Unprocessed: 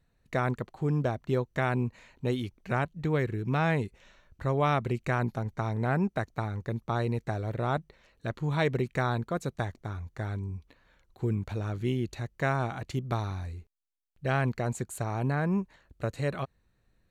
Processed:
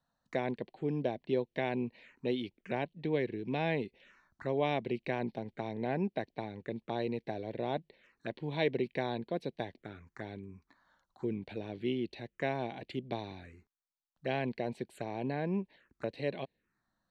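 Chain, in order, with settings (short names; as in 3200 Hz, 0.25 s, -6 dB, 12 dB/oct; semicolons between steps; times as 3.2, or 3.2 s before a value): three-band isolator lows -21 dB, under 200 Hz, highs -22 dB, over 6600 Hz; envelope phaser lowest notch 390 Hz, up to 1300 Hz, full sweep at -36 dBFS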